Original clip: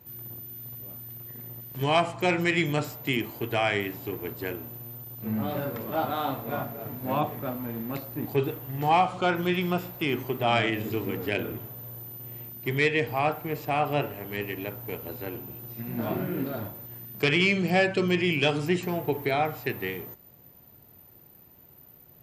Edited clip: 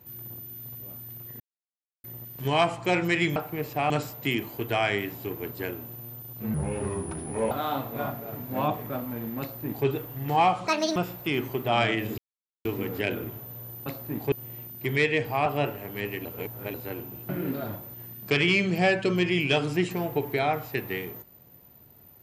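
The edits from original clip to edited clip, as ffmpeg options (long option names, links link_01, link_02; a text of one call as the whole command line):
ffmpeg -i in.wav -filter_complex "[0:a]asplit=15[link_01][link_02][link_03][link_04][link_05][link_06][link_07][link_08][link_09][link_10][link_11][link_12][link_13][link_14][link_15];[link_01]atrim=end=1.4,asetpts=PTS-STARTPTS,afade=type=out:start_time=1.396:duration=0.004:curve=hsin,apad=pad_dur=0.64[link_16];[link_02]atrim=start=1.4:end=2.722,asetpts=PTS-STARTPTS,afade=type=in:duration=0.004:curve=hsin[link_17];[link_03]atrim=start=13.278:end=13.822[link_18];[link_04]atrim=start=2.718:end=5.364[link_19];[link_05]atrim=start=5.36:end=6.04,asetpts=PTS-STARTPTS,asetrate=30870,aresample=44100[link_20];[link_06]atrim=start=6.036:end=9.204[link_21];[link_07]atrim=start=9.2:end=9.71,asetpts=PTS-STARTPTS,asetrate=78057,aresample=44100[link_22];[link_08]atrim=start=9.706:end=10.93,asetpts=PTS-STARTPTS,afade=type=out:start_time=1.22:duration=0.004:curve=hsin,apad=pad_dur=0.47[link_23];[link_09]atrim=start=10.93:end=12.142,asetpts=PTS-STARTPTS,afade=type=in:duration=0.004:curve=hsin[link_24];[link_10]atrim=start=7.928:end=8.392[link_25];[link_11]atrim=start=12.138:end=13.282[link_26];[link_12]atrim=start=13.818:end=14.612[link_27];[link_13]atrim=start=14.608:end=15.102,asetpts=PTS-STARTPTS,areverse[link_28];[link_14]atrim=start=15.098:end=15.652[link_29];[link_15]atrim=start=16.208[link_30];[link_16][link_17]concat=n=2:v=0:a=1[link_31];[link_31][link_18]acrossfade=duration=0.004:curve1=hsin:curve2=hsin[link_32];[link_32][link_19]acrossfade=duration=0.004:curve1=hsin:curve2=hsin[link_33];[link_33][link_20]acrossfade=duration=0.004:curve1=hsin:curve2=hsin[link_34];[link_34][link_21]acrossfade=duration=0.004:curve1=hsin:curve2=hsin[link_35];[link_35][link_22]acrossfade=duration=0.004:curve1=hsin:curve2=hsin[link_36];[link_23][link_24]concat=n=2:v=0:a=1[link_37];[link_36][link_37]acrossfade=duration=0.004:curve1=hsin:curve2=hsin[link_38];[link_38][link_25]acrossfade=duration=0.004:curve1=hsin:curve2=hsin[link_39];[link_39][link_26]acrossfade=duration=0.004:curve1=hsin:curve2=hsin[link_40];[link_40][link_27]acrossfade=duration=0.004:curve1=hsin:curve2=hsin[link_41];[link_41][link_28]acrossfade=duration=0.004:curve1=hsin:curve2=hsin[link_42];[link_42][link_29]acrossfade=duration=0.004:curve1=hsin:curve2=hsin[link_43];[link_43][link_30]acrossfade=duration=0.004:curve1=hsin:curve2=hsin" out.wav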